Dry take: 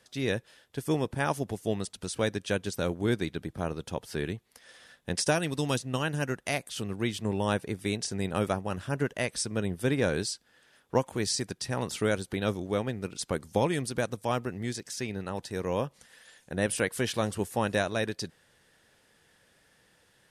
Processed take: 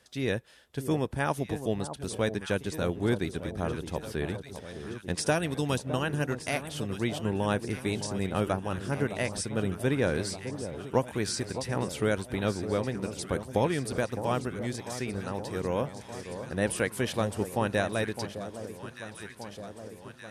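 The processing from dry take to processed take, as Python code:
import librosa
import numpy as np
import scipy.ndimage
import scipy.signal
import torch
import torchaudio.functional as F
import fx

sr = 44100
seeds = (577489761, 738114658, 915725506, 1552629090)

p1 = fx.peak_eq(x, sr, hz=62.0, db=11.5, octaves=0.36)
p2 = p1 + fx.echo_alternate(p1, sr, ms=611, hz=1100.0, feedback_pct=78, wet_db=-10, dry=0)
y = fx.dynamic_eq(p2, sr, hz=5700.0, q=0.86, threshold_db=-48.0, ratio=4.0, max_db=-4)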